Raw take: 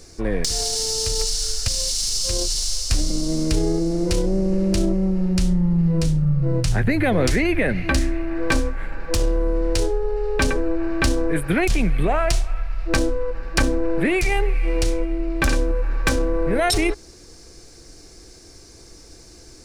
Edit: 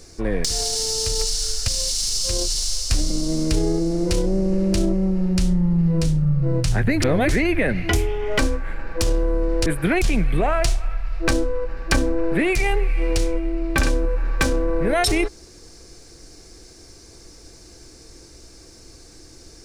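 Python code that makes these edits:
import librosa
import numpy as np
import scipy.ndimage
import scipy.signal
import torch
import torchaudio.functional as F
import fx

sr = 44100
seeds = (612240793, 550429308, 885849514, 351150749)

y = fx.edit(x, sr, fx.reverse_span(start_s=7.02, length_s=0.27),
    fx.speed_span(start_s=7.89, length_s=0.63, speed=1.26),
    fx.cut(start_s=9.79, length_s=1.53), tone=tone)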